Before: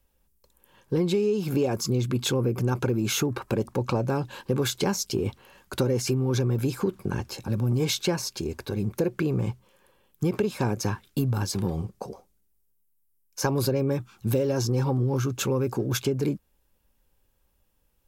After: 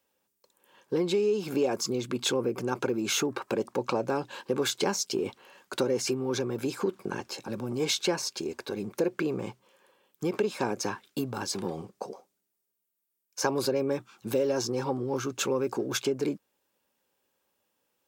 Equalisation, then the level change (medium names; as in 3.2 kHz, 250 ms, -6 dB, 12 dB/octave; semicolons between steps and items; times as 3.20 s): high-pass 290 Hz 12 dB/octave; peaking EQ 12 kHz -11.5 dB 0.31 oct; 0.0 dB